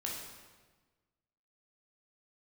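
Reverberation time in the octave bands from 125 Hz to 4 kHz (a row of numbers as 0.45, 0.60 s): 1.6, 1.5, 1.4, 1.3, 1.2, 1.1 s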